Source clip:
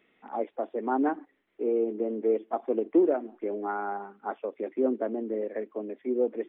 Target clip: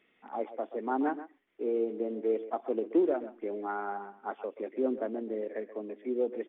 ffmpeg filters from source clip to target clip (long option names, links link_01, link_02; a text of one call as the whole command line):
ffmpeg -i in.wav -filter_complex "[0:a]highshelf=frequency=2200:gain=5.5,acrusher=bits=8:mode=log:mix=0:aa=0.000001,asplit=2[link_01][link_02];[link_02]adelay=130,highpass=300,lowpass=3400,asoftclip=type=hard:threshold=-17.5dB,volume=-13dB[link_03];[link_01][link_03]amix=inputs=2:normalize=0,aresample=8000,aresample=44100,volume=-4dB" out.wav